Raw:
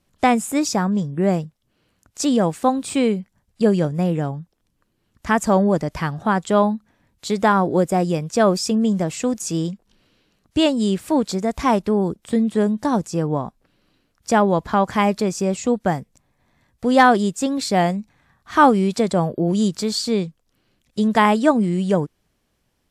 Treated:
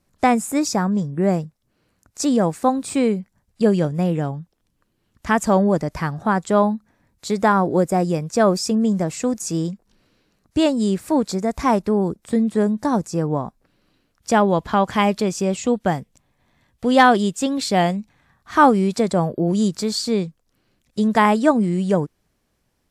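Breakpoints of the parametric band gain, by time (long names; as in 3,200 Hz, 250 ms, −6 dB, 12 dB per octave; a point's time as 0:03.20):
parametric band 3,100 Hz 0.53 octaves
0:03.12 −6.5 dB
0:03.77 0 dB
0:05.53 0 dB
0:05.97 −6.5 dB
0:13.38 −6.5 dB
0:14.61 +4 dB
0:17.98 +4 dB
0:18.59 −3.5 dB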